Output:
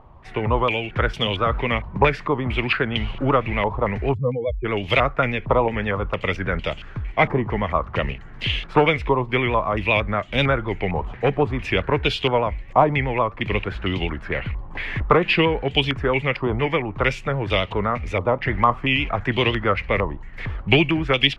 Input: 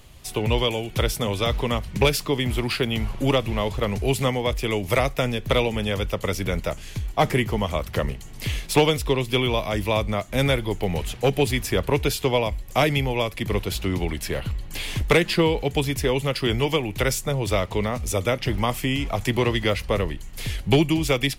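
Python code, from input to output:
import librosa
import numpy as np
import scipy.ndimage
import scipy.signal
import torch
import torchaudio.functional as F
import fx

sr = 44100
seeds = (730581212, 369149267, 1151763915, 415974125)

y = fx.spec_expand(x, sr, power=3.0, at=(4.13, 4.64), fade=0.02)
y = fx.vibrato(y, sr, rate_hz=7.9, depth_cents=61.0)
y = fx.filter_held_lowpass(y, sr, hz=4.4, low_hz=990.0, high_hz=3000.0)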